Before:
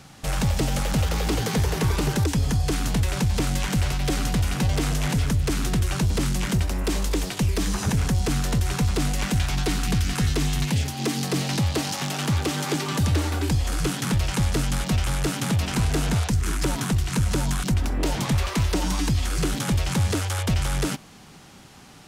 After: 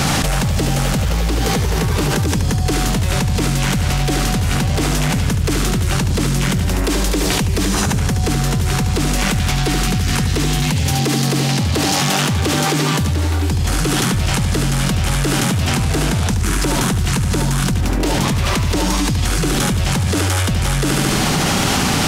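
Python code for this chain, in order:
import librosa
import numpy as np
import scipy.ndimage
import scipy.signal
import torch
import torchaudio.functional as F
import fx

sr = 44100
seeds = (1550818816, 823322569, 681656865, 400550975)

p1 = x + fx.echo_feedback(x, sr, ms=73, feedback_pct=41, wet_db=-6.0, dry=0)
y = fx.env_flatten(p1, sr, amount_pct=100)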